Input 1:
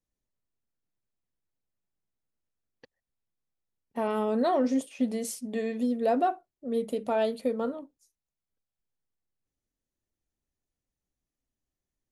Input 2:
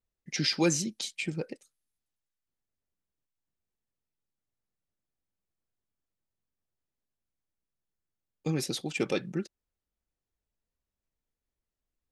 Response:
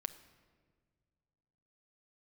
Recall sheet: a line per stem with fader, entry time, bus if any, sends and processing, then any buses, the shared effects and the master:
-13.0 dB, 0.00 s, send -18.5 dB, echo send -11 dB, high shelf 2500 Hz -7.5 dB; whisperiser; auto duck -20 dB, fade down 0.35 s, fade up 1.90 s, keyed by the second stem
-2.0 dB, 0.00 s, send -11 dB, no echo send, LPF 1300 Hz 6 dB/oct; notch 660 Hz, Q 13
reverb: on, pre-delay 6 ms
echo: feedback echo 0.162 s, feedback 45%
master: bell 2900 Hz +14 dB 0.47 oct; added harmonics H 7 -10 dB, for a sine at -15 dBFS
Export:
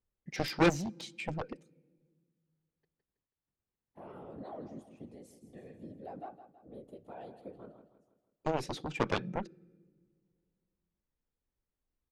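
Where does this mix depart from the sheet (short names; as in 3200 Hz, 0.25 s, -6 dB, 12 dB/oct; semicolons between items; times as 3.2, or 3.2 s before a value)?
stem 1 -13.0 dB -> -22.5 dB; master: missing bell 2900 Hz +14 dB 0.47 oct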